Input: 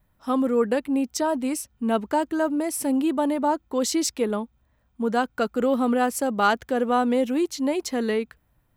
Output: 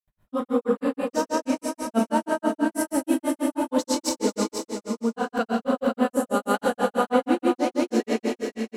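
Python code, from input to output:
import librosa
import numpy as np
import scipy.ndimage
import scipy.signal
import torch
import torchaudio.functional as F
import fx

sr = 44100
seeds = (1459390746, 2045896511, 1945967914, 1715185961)

p1 = fx.rev_schroeder(x, sr, rt60_s=2.7, comb_ms=31, drr_db=-1.5)
p2 = fx.granulator(p1, sr, seeds[0], grain_ms=130.0, per_s=6.2, spray_ms=100.0, spread_st=0)
p3 = fx.spec_box(p2, sr, start_s=6.08, length_s=0.46, low_hz=660.0, high_hz=6400.0, gain_db=-7)
y = p3 + fx.echo_single(p3, sr, ms=489, db=-7.5, dry=0)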